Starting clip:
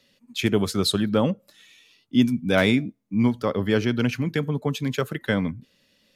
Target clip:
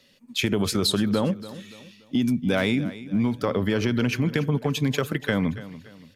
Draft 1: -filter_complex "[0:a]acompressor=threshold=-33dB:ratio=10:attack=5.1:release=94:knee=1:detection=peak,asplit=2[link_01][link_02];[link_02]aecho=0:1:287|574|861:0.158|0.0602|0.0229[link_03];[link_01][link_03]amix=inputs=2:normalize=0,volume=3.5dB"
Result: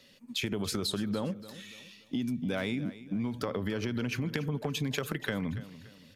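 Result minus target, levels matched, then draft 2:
downward compressor: peak gain reduction +10 dB
-filter_complex "[0:a]acompressor=threshold=-22dB:ratio=10:attack=5.1:release=94:knee=1:detection=peak,asplit=2[link_01][link_02];[link_02]aecho=0:1:287|574|861:0.158|0.0602|0.0229[link_03];[link_01][link_03]amix=inputs=2:normalize=0,volume=3.5dB"

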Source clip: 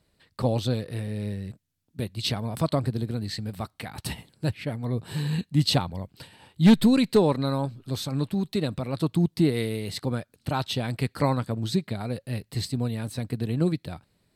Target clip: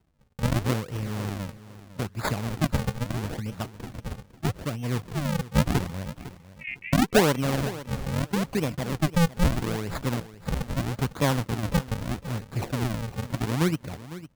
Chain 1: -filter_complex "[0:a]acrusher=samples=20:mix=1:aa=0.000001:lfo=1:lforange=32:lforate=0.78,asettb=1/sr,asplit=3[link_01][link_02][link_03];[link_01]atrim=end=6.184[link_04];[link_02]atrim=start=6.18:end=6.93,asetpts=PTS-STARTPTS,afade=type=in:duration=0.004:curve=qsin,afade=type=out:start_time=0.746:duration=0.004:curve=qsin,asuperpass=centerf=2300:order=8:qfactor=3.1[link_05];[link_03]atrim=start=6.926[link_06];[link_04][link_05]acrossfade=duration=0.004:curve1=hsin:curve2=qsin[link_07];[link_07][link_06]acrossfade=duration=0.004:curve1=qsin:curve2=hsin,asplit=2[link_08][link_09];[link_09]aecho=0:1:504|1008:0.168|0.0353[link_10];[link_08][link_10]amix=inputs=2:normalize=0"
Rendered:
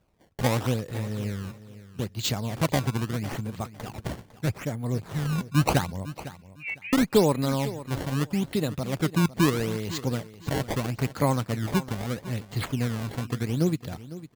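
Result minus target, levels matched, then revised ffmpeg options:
sample-and-hold swept by an LFO: distortion −16 dB
-filter_complex "[0:a]acrusher=samples=75:mix=1:aa=0.000001:lfo=1:lforange=120:lforate=0.78,asettb=1/sr,asplit=3[link_01][link_02][link_03];[link_01]atrim=end=6.184[link_04];[link_02]atrim=start=6.18:end=6.93,asetpts=PTS-STARTPTS,afade=type=in:duration=0.004:curve=qsin,afade=type=out:start_time=0.746:duration=0.004:curve=qsin,asuperpass=centerf=2300:order=8:qfactor=3.1[link_05];[link_03]atrim=start=6.926[link_06];[link_04][link_05]acrossfade=duration=0.004:curve1=hsin:curve2=qsin[link_07];[link_07][link_06]acrossfade=duration=0.004:curve1=qsin:curve2=hsin,asplit=2[link_08][link_09];[link_09]aecho=0:1:504|1008:0.168|0.0353[link_10];[link_08][link_10]amix=inputs=2:normalize=0"

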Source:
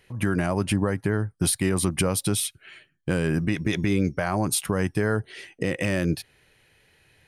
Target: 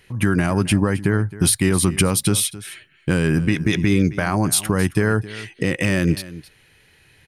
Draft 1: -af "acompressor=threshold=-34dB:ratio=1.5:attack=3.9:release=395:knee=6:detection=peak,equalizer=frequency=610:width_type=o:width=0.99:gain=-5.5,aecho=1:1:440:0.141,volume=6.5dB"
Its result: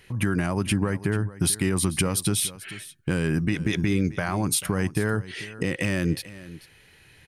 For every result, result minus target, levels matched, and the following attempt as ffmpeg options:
echo 174 ms late; downward compressor: peak gain reduction +7 dB
-af "acompressor=threshold=-34dB:ratio=1.5:attack=3.9:release=395:knee=6:detection=peak,equalizer=frequency=610:width_type=o:width=0.99:gain=-5.5,aecho=1:1:266:0.141,volume=6.5dB"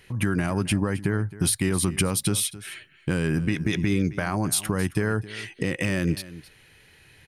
downward compressor: peak gain reduction +7 dB
-af "equalizer=frequency=610:width_type=o:width=0.99:gain=-5.5,aecho=1:1:266:0.141,volume=6.5dB"

